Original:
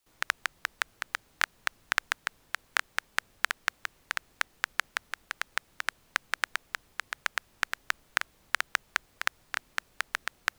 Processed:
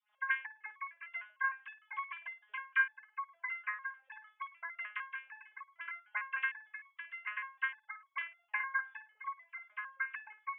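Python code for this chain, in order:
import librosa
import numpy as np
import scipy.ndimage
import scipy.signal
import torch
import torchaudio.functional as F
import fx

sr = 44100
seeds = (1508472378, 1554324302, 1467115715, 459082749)

y = fx.sine_speech(x, sr)
y = fx.room_flutter(y, sr, wall_m=9.1, rt60_s=0.27)
y = fx.resonator_held(y, sr, hz=6.6, low_hz=210.0, high_hz=1100.0)
y = F.gain(torch.from_numpy(y), 8.5).numpy()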